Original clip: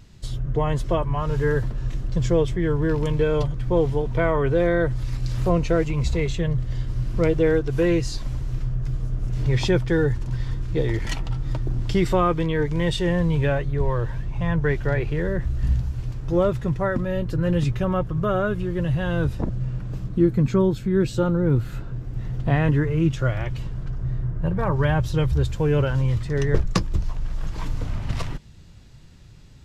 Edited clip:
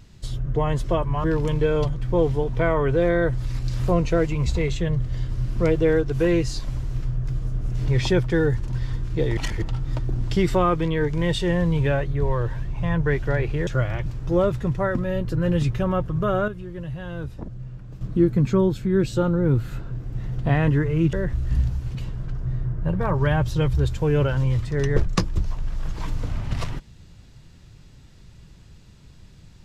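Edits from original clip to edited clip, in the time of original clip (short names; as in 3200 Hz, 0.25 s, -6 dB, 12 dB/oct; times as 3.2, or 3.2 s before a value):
1.24–2.82 cut
10.95–11.2 reverse
15.25–16.07 swap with 23.14–23.53
18.49–20.02 gain -9 dB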